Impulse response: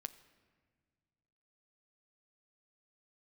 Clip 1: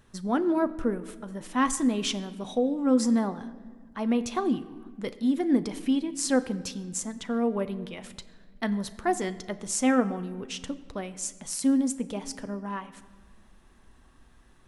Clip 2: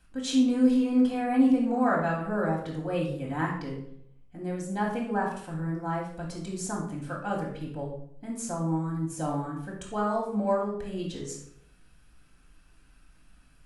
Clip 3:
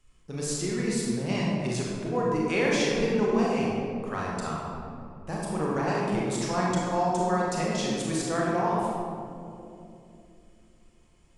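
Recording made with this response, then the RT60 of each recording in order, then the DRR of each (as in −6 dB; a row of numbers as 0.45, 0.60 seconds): 1; 1.7, 0.70, 2.8 seconds; 10.5, −2.5, −5.0 decibels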